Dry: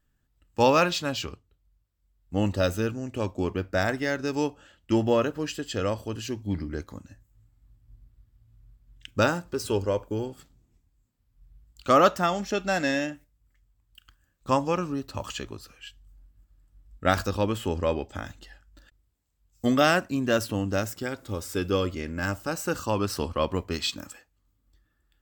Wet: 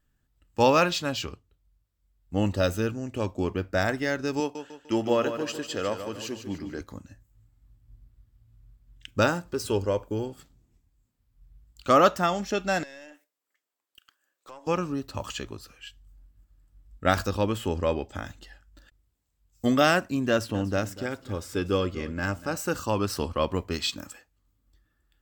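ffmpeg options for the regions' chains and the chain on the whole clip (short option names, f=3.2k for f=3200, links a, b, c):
-filter_complex "[0:a]asettb=1/sr,asplit=3[a][b][c];[a]atrim=end=4.404[d];[b]atrim=start=4.4:end=6.81,asetpts=PTS-STARTPTS,afade=t=in:d=0.004:c=qsin,afade=t=out:st=2.406:d=0.004:c=qsin,highpass=f=290:p=1,aecho=1:1:149|298|447|596|745:0.355|0.149|0.0626|0.0263|0.011,atrim=end_sample=106281[e];[c]atrim=start=6.806[f];[d][e]acrossfade=d=0.004:c1=hsin:c2=qsin[g];[g][f]acrossfade=d=0.004:c1=qsin:c2=hsin,asettb=1/sr,asplit=3[h][i][j];[h]atrim=end=12.834[k];[i]atrim=start=12.83:end=14.67,asetpts=PTS-STARTPTS,afade=t=in:d=0.004:c=qsin,afade=t=out:st=1.836:d=0.004:c=qsin,highpass=f=370:w=0.5412,highpass=f=370:w=1.3066,acompressor=threshold=-40dB:ratio=6:attack=3.2:release=140:knee=1:detection=peak,aeval=exprs='(tanh(56.2*val(0)+0.4)-tanh(0.4))/56.2':c=same[l];[j]atrim=start=14.666[m];[k][l]acrossfade=d=0.004:c1=hsin:c2=qsin[n];[n][m]acrossfade=d=0.004:c1=qsin:c2=hsin,asettb=1/sr,asplit=3[o][p][q];[o]atrim=end=20.304[r];[p]atrim=start=20.3:end=22.57,asetpts=PTS-STARTPTS,afade=t=in:d=0.004:c=qsin,afade=t=out:st=2.266:d=0.004:c=qsin,highshelf=f=8.1k:g=-9,aecho=1:1:242:0.15,atrim=end_sample=100107[s];[q]atrim=start=22.566[t];[r][s]acrossfade=d=0.004:c1=hsin:c2=qsin[u];[u][t]acrossfade=d=0.004:c1=qsin:c2=hsin"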